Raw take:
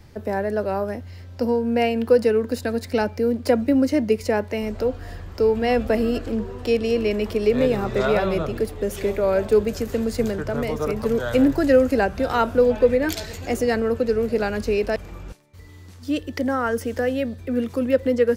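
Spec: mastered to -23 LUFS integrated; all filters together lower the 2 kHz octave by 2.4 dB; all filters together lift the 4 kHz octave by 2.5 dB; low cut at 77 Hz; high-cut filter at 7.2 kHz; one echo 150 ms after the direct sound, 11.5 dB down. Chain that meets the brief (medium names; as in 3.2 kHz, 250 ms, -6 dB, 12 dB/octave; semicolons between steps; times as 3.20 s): high-pass 77 Hz; low-pass 7.2 kHz; peaking EQ 2 kHz -4.5 dB; peaking EQ 4 kHz +5.5 dB; delay 150 ms -11.5 dB; trim -1 dB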